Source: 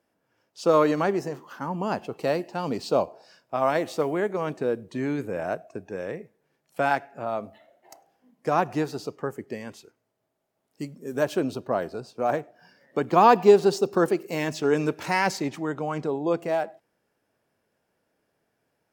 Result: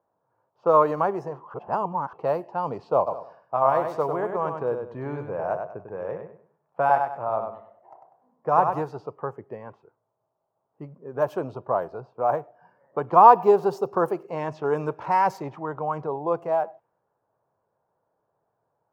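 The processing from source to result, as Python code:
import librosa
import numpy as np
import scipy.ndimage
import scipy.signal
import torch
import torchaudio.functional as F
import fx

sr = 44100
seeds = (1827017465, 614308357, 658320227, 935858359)

y = fx.echo_feedback(x, sr, ms=98, feedback_pct=30, wet_db=-6.0, at=(3.06, 8.81), fade=0.02)
y = fx.edit(y, sr, fx.reverse_span(start_s=1.54, length_s=0.59), tone=tone)
y = fx.graphic_eq(y, sr, hz=(125, 250, 500, 1000, 2000, 4000, 8000), db=(7, -8, 3, 12, -7, -9, -11))
y = fx.env_lowpass(y, sr, base_hz=1400.0, full_db=-17.0)
y = fx.low_shelf(y, sr, hz=130.0, db=-3.5)
y = F.gain(torch.from_numpy(y), -3.5).numpy()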